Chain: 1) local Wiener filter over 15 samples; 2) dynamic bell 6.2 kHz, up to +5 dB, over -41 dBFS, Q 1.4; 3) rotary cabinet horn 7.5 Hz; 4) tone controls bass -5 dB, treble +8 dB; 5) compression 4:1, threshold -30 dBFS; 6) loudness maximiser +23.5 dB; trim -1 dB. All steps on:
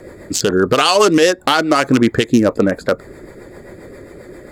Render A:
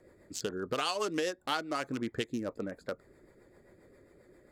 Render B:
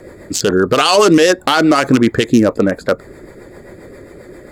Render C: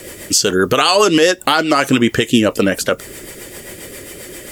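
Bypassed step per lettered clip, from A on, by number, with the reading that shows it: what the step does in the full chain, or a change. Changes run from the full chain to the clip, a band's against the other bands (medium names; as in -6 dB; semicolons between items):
6, crest factor change +7.0 dB; 5, mean gain reduction 5.5 dB; 1, 8 kHz band +5.0 dB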